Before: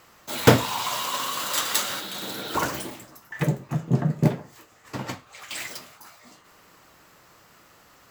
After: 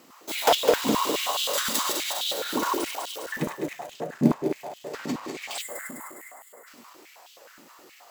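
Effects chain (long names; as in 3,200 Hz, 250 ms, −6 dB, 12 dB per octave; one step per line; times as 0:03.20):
feedback delay that plays each chunk backwards 102 ms, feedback 76%, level −4.5 dB
parametric band 1,500 Hz −6.5 dB 1.5 octaves
in parallel at −0.5 dB: downward compressor, threshold −33 dBFS, peak gain reduction 21 dB
on the sum: gain on a spectral selection 0:05.61–0:06.67, 2,200–6,700 Hz −20 dB
high-pass on a step sequencer 9.5 Hz 240–3,200 Hz
level −5 dB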